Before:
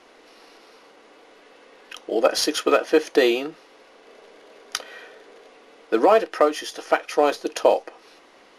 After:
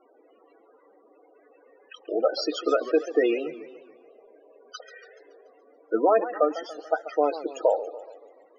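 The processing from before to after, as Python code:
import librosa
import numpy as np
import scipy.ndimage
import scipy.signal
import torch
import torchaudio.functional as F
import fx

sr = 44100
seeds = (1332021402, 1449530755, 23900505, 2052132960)

y = fx.dynamic_eq(x, sr, hz=2700.0, q=1.6, threshold_db=-42.0, ratio=4.0, max_db=-6, at=(6.44, 7.11))
y = fx.spec_topn(y, sr, count=16)
y = fx.echo_warbled(y, sr, ms=143, feedback_pct=52, rate_hz=2.8, cents=207, wet_db=-14)
y = F.gain(torch.from_numpy(y), -4.0).numpy()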